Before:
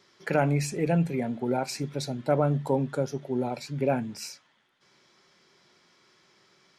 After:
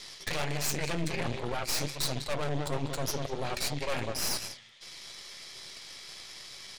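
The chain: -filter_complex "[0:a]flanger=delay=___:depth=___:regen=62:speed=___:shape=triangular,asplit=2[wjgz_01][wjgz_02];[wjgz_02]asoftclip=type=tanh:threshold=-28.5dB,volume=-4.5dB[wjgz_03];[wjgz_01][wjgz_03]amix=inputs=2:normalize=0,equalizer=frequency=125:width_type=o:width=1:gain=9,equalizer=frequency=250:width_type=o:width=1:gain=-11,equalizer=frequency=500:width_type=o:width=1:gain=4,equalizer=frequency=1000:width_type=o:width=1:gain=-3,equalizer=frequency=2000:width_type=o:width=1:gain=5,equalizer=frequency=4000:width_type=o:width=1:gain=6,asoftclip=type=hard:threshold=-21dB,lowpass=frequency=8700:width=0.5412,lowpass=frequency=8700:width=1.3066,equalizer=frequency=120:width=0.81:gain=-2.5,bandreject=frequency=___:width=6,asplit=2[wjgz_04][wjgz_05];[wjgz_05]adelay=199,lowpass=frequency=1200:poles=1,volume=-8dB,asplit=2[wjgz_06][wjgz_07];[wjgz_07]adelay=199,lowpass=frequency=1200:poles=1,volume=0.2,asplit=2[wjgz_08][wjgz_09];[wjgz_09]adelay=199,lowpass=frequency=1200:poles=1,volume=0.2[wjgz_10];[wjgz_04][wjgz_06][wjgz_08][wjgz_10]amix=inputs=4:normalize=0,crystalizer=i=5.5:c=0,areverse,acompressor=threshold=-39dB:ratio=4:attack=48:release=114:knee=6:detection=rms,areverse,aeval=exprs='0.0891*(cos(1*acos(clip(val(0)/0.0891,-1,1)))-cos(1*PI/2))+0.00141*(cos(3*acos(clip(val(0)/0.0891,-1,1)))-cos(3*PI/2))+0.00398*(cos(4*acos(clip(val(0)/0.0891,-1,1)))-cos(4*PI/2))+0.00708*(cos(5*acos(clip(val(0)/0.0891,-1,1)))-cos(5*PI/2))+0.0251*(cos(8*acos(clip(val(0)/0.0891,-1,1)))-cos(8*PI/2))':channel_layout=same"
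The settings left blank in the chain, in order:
4.4, 8.6, 1.4, 1500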